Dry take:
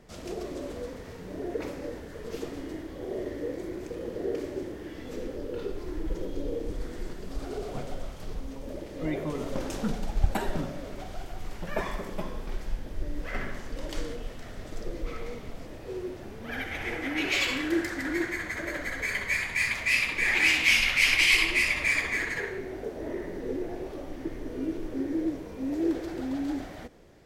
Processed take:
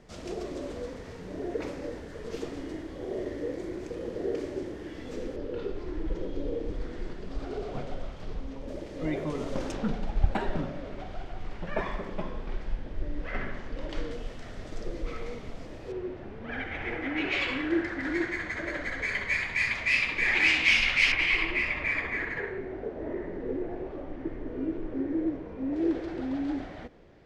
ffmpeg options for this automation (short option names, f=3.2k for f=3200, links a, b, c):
-af "asetnsamples=n=441:p=0,asendcmd='5.36 lowpass f 4200;8.68 lowpass f 7400;9.72 lowpass f 3500;14.11 lowpass f 7000;15.92 lowpass f 2700;18.03 lowpass f 4600;21.12 lowpass f 2100;25.76 lowpass f 3700',lowpass=8k"